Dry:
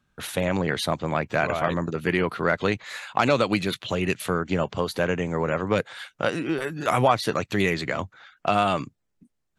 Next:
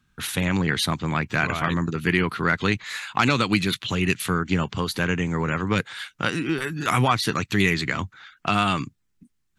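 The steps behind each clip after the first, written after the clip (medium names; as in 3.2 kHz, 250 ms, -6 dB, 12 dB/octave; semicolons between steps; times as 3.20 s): peaking EQ 590 Hz -14.5 dB 1 oct; trim +5 dB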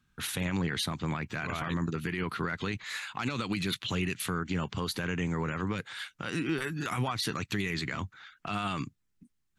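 peak limiter -16.5 dBFS, peak gain reduction 11 dB; trim -5 dB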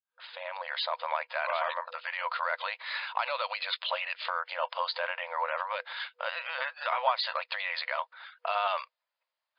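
fade-in on the opening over 0.97 s; small resonant body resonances 630/940 Hz, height 10 dB, ringing for 20 ms; FFT band-pass 490–5100 Hz; trim +2 dB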